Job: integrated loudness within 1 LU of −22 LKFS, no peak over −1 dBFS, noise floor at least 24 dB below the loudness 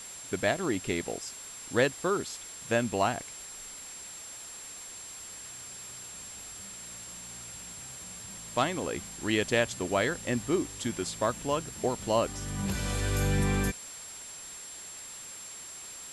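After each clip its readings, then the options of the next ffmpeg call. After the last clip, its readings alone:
interfering tone 7,500 Hz; level of the tone −43 dBFS; background noise floor −44 dBFS; target noise floor −57 dBFS; integrated loudness −32.5 LKFS; sample peak −11.5 dBFS; target loudness −22.0 LKFS
→ -af "bandreject=frequency=7500:width=30"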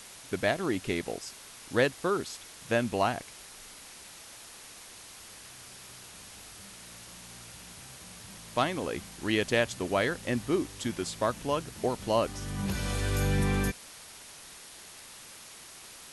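interfering tone none found; background noise floor −49 dBFS; target noise floor −55 dBFS
→ -af "afftdn=noise_reduction=6:noise_floor=-49"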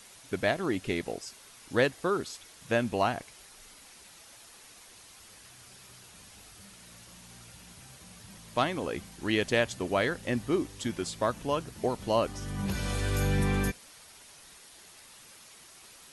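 background noise floor −53 dBFS; target noise floor −55 dBFS
→ -af "afftdn=noise_reduction=6:noise_floor=-53"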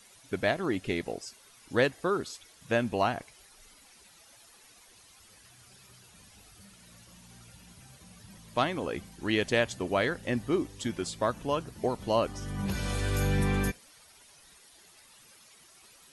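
background noise floor −58 dBFS; integrated loudness −30.5 LKFS; sample peak −11.5 dBFS; target loudness −22.0 LKFS
→ -af "volume=8.5dB"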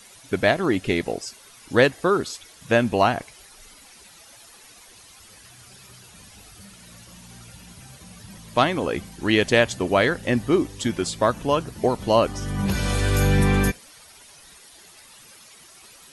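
integrated loudness −22.0 LKFS; sample peak −3.0 dBFS; background noise floor −49 dBFS

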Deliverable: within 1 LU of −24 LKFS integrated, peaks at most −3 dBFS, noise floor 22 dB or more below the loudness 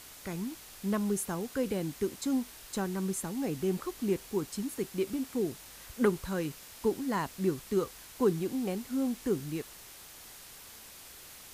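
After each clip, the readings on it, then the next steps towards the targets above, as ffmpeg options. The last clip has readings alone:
background noise floor −50 dBFS; target noise floor −56 dBFS; integrated loudness −33.5 LKFS; sample peak −13.0 dBFS; target loudness −24.0 LKFS
→ -af "afftdn=noise_reduction=6:noise_floor=-50"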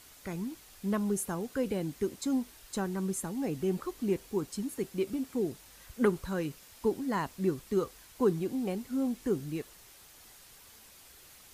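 background noise floor −56 dBFS; integrated loudness −33.5 LKFS; sample peak −13.0 dBFS; target loudness −24.0 LKFS
→ -af "volume=9.5dB"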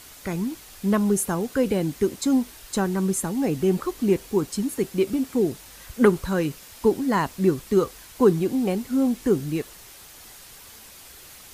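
integrated loudness −24.0 LKFS; sample peak −3.5 dBFS; background noise floor −46 dBFS

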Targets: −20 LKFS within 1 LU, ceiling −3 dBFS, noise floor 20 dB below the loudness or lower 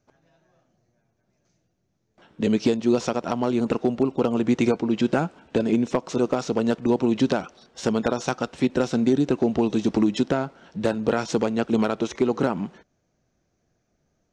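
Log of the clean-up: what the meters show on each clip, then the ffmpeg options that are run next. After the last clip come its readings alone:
integrated loudness −24.0 LKFS; sample peak −10.5 dBFS; target loudness −20.0 LKFS
→ -af "volume=4dB"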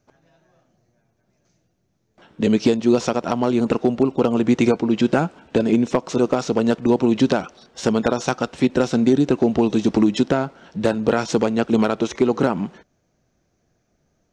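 integrated loudness −20.0 LKFS; sample peak −6.5 dBFS; background noise floor −69 dBFS

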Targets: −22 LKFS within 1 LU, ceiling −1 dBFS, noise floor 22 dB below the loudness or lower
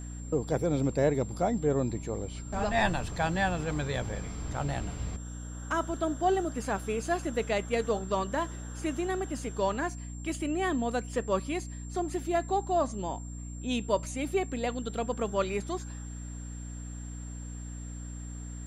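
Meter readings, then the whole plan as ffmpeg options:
mains hum 60 Hz; hum harmonics up to 300 Hz; level of the hum −38 dBFS; interfering tone 7,400 Hz; level of the tone −49 dBFS; integrated loudness −32.0 LKFS; sample peak −14.0 dBFS; target loudness −22.0 LKFS
→ -af "bandreject=frequency=60:width_type=h:width=4,bandreject=frequency=120:width_type=h:width=4,bandreject=frequency=180:width_type=h:width=4,bandreject=frequency=240:width_type=h:width=4,bandreject=frequency=300:width_type=h:width=4"
-af "bandreject=frequency=7400:width=30"
-af "volume=10dB"

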